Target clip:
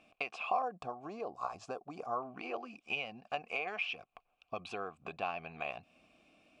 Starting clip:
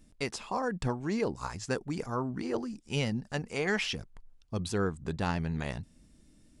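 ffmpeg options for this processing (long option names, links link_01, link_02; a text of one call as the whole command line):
ffmpeg -i in.wav -filter_complex "[0:a]asetnsamples=nb_out_samples=441:pad=0,asendcmd='0.62 equalizer g -6;2.23 equalizer g 10.5',equalizer=frequency=2400:width_type=o:width=1.1:gain=11,acompressor=threshold=-38dB:ratio=6,asplit=3[link_01][link_02][link_03];[link_01]bandpass=frequency=730:width_type=q:width=8,volume=0dB[link_04];[link_02]bandpass=frequency=1090:width_type=q:width=8,volume=-6dB[link_05];[link_03]bandpass=frequency=2440:width_type=q:width=8,volume=-9dB[link_06];[link_04][link_05][link_06]amix=inputs=3:normalize=0,volume=16dB" out.wav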